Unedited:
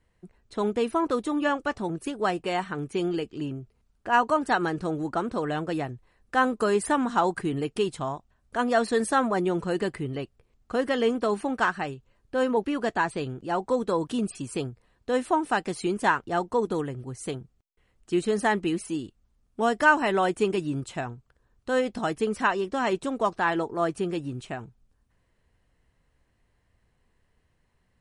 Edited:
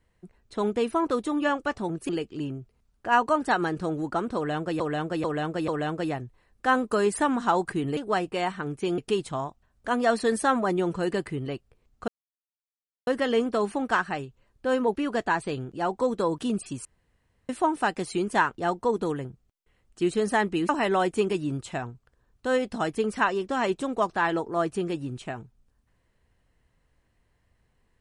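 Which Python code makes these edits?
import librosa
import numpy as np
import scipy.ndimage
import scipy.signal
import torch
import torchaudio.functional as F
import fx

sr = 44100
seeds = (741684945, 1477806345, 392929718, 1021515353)

y = fx.edit(x, sr, fx.move(start_s=2.09, length_s=1.01, to_s=7.66),
    fx.repeat(start_s=5.37, length_s=0.44, count=4),
    fx.insert_silence(at_s=10.76, length_s=0.99),
    fx.room_tone_fill(start_s=14.54, length_s=0.64),
    fx.cut(start_s=16.94, length_s=0.42),
    fx.cut(start_s=18.8, length_s=1.12), tone=tone)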